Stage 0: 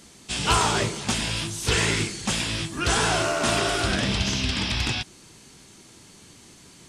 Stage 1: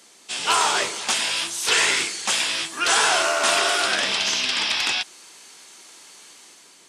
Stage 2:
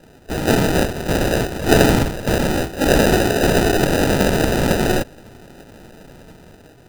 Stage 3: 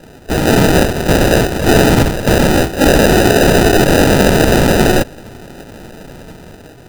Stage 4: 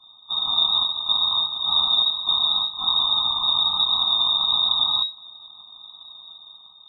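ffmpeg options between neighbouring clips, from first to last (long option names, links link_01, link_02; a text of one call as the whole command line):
ffmpeg -i in.wav -filter_complex "[0:a]highpass=460,acrossover=split=670[link_01][link_02];[link_02]dynaudnorm=framelen=170:gausssize=7:maxgain=5.5dB[link_03];[link_01][link_03]amix=inputs=2:normalize=0" out.wav
ffmpeg -i in.wav -af "equalizer=frequency=1000:width_type=o:width=1:gain=-10,equalizer=frequency=2000:width_type=o:width=1:gain=3,equalizer=frequency=8000:width_type=o:width=1:gain=-6,acrusher=samples=40:mix=1:aa=0.000001,volume=7.5dB" out.wav
ffmpeg -i in.wav -af "alimiter=level_in=9.5dB:limit=-1dB:release=50:level=0:latency=1,volume=-1dB" out.wav
ffmpeg -i in.wav -af "afftfilt=real='re*(1-between(b*sr/4096,230,2500))':imag='im*(1-between(b*sr/4096,230,2500))':win_size=4096:overlap=0.75,lowpass=frequency=3200:width_type=q:width=0.5098,lowpass=frequency=3200:width_type=q:width=0.6013,lowpass=frequency=3200:width_type=q:width=0.9,lowpass=frequency=3200:width_type=q:width=2.563,afreqshift=-3800,volume=-7dB" out.wav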